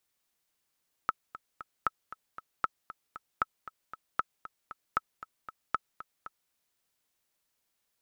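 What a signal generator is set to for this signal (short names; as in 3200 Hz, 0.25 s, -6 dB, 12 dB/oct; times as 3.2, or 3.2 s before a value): metronome 232 bpm, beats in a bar 3, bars 7, 1300 Hz, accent 15.5 dB -13 dBFS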